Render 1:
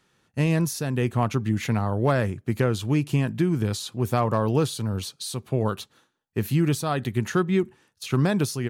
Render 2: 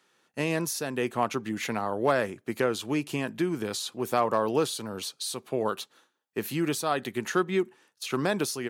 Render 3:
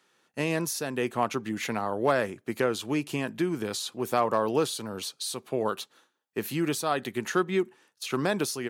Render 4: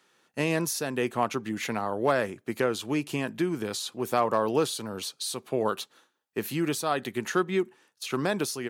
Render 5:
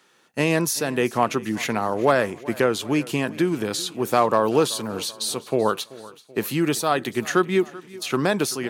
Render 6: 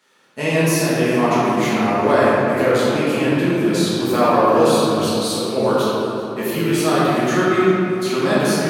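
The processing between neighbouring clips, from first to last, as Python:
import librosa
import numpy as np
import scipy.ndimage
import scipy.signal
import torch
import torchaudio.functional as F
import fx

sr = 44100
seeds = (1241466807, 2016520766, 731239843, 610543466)

y1 = scipy.signal.sosfilt(scipy.signal.butter(2, 320.0, 'highpass', fs=sr, output='sos'), x)
y2 = y1
y3 = fx.rider(y2, sr, range_db=3, speed_s=2.0)
y4 = fx.echo_feedback(y3, sr, ms=383, feedback_pct=54, wet_db=-20.0)
y4 = y4 * librosa.db_to_amplitude(6.0)
y5 = fx.room_shoebox(y4, sr, seeds[0], volume_m3=130.0, walls='hard', distance_m=1.4)
y5 = y5 * librosa.db_to_amplitude(-5.5)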